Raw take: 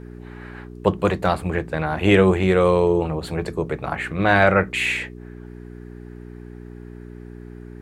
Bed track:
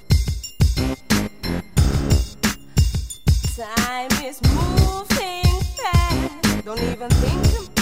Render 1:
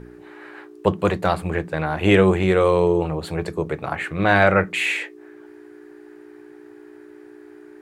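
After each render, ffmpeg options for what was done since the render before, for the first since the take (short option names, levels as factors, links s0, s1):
-af "bandreject=f=60:t=h:w=4,bandreject=f=120:t=h:w=4,bandreject=f=180:t=h:w=4,bandreject=f=240:t=h:w=4"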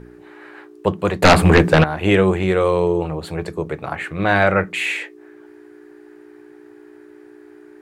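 -filter_complex "[0:a]asettb=1/sr,asplit=3[s0][s1][s2];[s0]atrim=end=1.224[s3];[s1]atrim=start=1.22:end=1.84,asetpts=PTS-STARTPTS,afade=t=in:d=0.004:c=qsin,afade=t=out:st=0.616:d=0.004:c=qsin,aeval=exprs='0.596*sin(PI/2*3.98*val(0)/0.596)':c=same[s4];[s2]atrim=start=1.836[s5];[s3][s4]acrossfade=d=0.004:c1=hsin:c2=qsin[s6];[s6][s5]acrossfade=d=0.004:c1=qsin:c2=hsin"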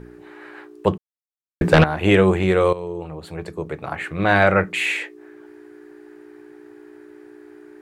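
-filter_complex "[0:a]asplit=4[s0][s1][s2][s3];[s0]atrim=end=0.98,asetpts=PTS-STARTPTS,afade=t=out:st=0.976:d=0.004:c=hsin[s4];[s1]atrim=start=0.98:end=1.61,asetpts=PTS-STARTPTS,volume=0[s5];[s2]atrim=start=1.61:end=2.73,asetpts=PTS-STARTPTS,afade=t=in:d=0.004:c=hsin,afade=t=out:st=1.116:d=0.004:c=hsin:silence=0.188365[s6];[s3]atrim=start=2.73,asetpts=PTS-STARTPTS,afade=t=in:d=1.61:silence=0.188365[s7];[s4][s5][s6][s7]concat=n=4:v=0:a=1"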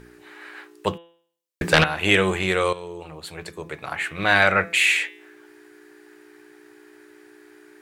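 -af "tiltshelf=f=1300:g=-8,bandreject=f=169.2:t=h:w=4,bandreject=f=338.4:t=h:w=4,bandreject=f=507.6:t=h:w=4,bandreject=f=676.8:t=h:w=4,bandreject=f=846:t=h:w=4,bandreject=f=1015.2:t=h:w=4,bandreject=f=1184.4:t=h:w=4,bandreject=f=1353.6:t=h:w=4,bandreject=f=1522.8:t=h:w=4,bandreject=f=1692:t=h:w=4,bandreject=f=1861.2:t=h:w=4,bandreject=f=2030.4:t=h:w=4,bandreject=f=2199.6:t=h:w=4,bandreject=f=2368.8:t=h:w=4,bandreject=f=2538:t=h:w=4,bandreject=f=2707.2:t=h:w=4,bandreject=f=2876.4:t=h:w=4,bandreject=f=3045.6:t=h:w=4,bandreject=f=3214.8:t=h:w=4,bandreject=f=3384:t=h:w=4,bandreject=f=3553.2:t=h:w=4,bandreject=f=3722.4:t=h:w=4,bandreject=f=3891.6:t=h:w=4"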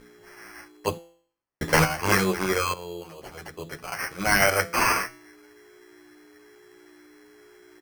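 -filter_complex "[0:a]acrusher=samples=12:mix=1:aa=0.000001,asplit=2[s0][s1];[s1]adelay=9.9,afreqshift=1.1[s2];[s0][s2]amix=inputs=2:normalize=1"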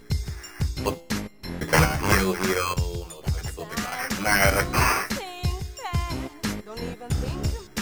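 -filter_complex "[1:a]volume=0.316[s0];[0:a][s0]amix=inputs=2:normalize=0"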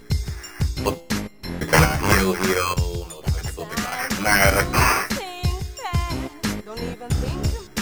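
-af "volume=1.5,alimiter=limit=0.891:level=0:latency=1"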